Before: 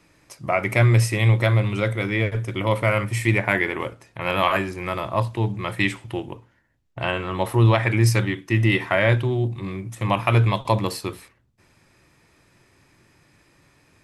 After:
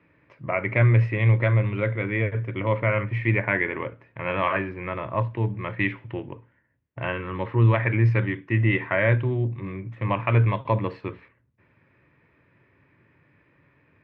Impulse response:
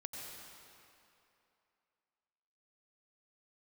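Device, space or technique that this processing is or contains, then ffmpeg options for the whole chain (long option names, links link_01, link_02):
bass cabinet: -filter_complex "[0:a]asettb=1/sr,asplit=3[link_01][link_02][link_03];[link_01]atrim=end=7.124[link_04];[link_02]atrim=start=7.12:end=7.74,asetpts=PTS-STARTPTS,afade=type=in:duration=0.004:curve=qsin,afade=type=out:start_time=0.616:duration=0.004:curve=qsin,equalizer=frequency=680:width_type=o:width=0.4:gain=-10.5[link_05];[link_03]atrim=start=7.736[link_06];[link_04][link_05]acrossfade=duration=0.004:curve1=hsin:curve2=qsin[link_07];[link_07][link_06]acrossfade=duration=0.004:curve1=qsin:curve2=hsin,highpass=87,equalizer=frequency=200:width_type=q:width=4:gain=-4,equalizer=frequency=350:width_type=q:width=4:gain=-4,equalizer=frequency=760:width_type=q:width=4:gain=-10,equalizer=frequency=1300:width_type=q:width=4:gain=-5,lowpass=frequency=2300:width=0.5412,lowpass=frequency=2300:width=1.3066"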